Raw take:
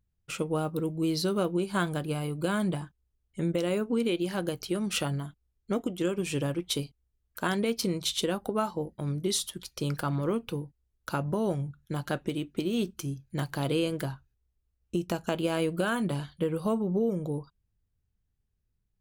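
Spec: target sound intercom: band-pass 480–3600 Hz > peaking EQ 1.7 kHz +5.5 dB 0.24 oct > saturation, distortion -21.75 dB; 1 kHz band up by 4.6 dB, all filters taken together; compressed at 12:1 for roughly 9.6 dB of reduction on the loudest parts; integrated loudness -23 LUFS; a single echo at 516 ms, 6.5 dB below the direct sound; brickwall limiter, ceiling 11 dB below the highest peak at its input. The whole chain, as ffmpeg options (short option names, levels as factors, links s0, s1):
-af "equalizer=f=1000:t=o:g=6,acompressor=threshold=0.0251:ratio=12,alimiter=level_in=1.68:limit=0.0631:level=0:latency=1,volume=0.596,highpass=480,lowpass=3600,equalizer=f=1700:t=o:w=0.24:g=5.5,aecho=1:1:516:0.473,asoftclip=threshold=0.0316,volume=11.2"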